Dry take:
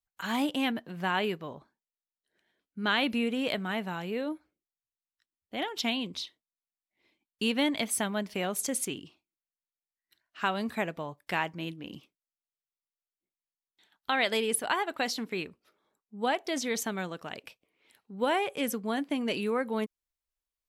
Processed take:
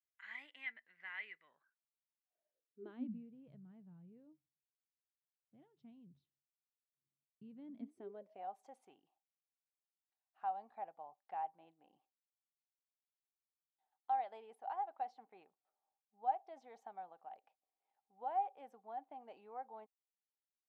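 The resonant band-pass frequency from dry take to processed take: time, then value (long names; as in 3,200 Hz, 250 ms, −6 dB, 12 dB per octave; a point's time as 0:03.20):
resonant band-pass, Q 17
0:01.44 2,000 Hz
0:02.82 400 Hz
0:03.27 140 Hz
0:07.49 140 Hz
0:08.43 780 Hz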